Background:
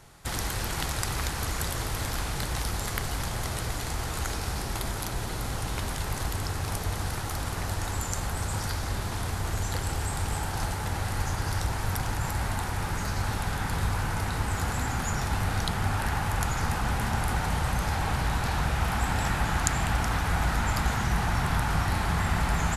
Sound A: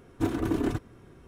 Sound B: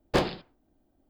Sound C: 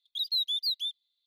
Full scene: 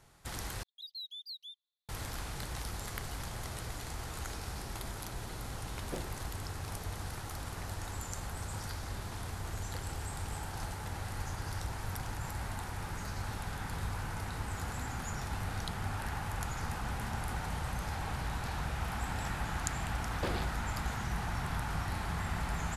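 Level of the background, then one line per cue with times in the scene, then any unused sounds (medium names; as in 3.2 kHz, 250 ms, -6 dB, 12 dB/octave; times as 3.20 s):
background -9.5 dB
0.63 s: replace with C -15.5 dB
5.78 s: add B -15 dB + median filter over 41 samples
20.09 s: add B -4.5 dB + compression 4:1, threshold -28 dBFS
not used: A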